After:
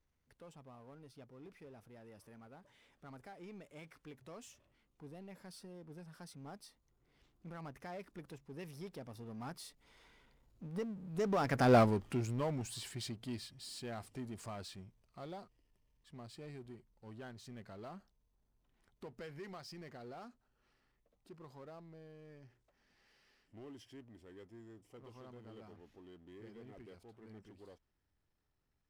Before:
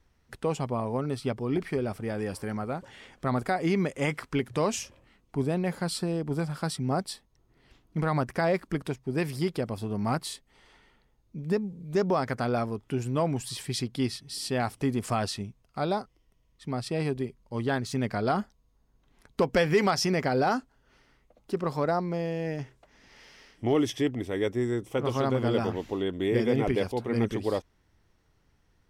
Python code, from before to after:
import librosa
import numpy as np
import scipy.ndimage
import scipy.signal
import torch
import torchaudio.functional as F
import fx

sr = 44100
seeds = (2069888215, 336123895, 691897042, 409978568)

y = fx.doppler_pass(x, sr, speed_mps=22, closest_m=1.8, pass_at_s=11.76)
y = fx.power_curve(y, sr, exponent=0.7)
y = y * 10.0 ** (1.5 / 20.0)